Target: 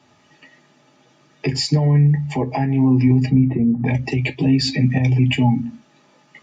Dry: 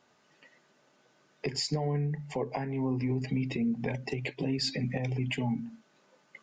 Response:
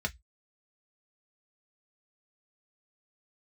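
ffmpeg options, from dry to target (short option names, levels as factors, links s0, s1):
-filter_complex "[0:a]asplit=3[s0][s1][s2];[s0]afade=t=out:st=3.28:d=0.02[s3];[s1]lowpass=f=1500:w=0.5412,lowpass=f=1500:w=1.3066,afade=t=in:st=3.28:d=0.02,afade=t=out:st=3.85:d=0.02[s4];[s2]afade=t=in:st=3.85:d=0.02[s5];[s3][s4][s5]amix=inputs=3:normalize=0[s6];[1:a]atrim=start_sample=2205,asetrate=57330,aresample=44100[s7];[s6][s7]afir=irnorm=-1:irlink=0,volume=2.66"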